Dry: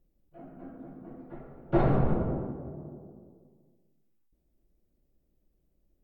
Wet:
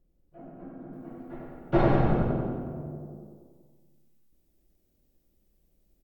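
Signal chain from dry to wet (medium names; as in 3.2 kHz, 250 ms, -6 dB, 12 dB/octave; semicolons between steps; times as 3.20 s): treble shelf 2.2 kHz -5 dB, from 0.93 s +8 dB; feedback delay 94 ms, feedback 58%, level -5 dB; trim +1 dB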